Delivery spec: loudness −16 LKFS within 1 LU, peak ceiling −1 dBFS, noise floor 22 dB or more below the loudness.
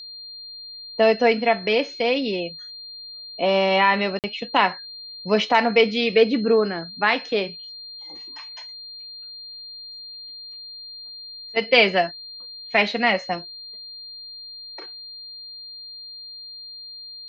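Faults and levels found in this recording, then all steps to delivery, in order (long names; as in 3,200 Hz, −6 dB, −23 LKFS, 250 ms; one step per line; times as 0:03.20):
number of dropouts 1; longest dropout 48 ms; interfering tone 4,200 Hz; level of the tone −36 dBFS; integrated loudness −20.5 LKFS; sample peak −3.5 dBFS; target loudness −16.0 LKFS
→ repair the gap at 0:04.19, 48 ms
notch filter 4,200 Hz, Q 30
level +4.5 dB
brickwall limiter −1 dBFS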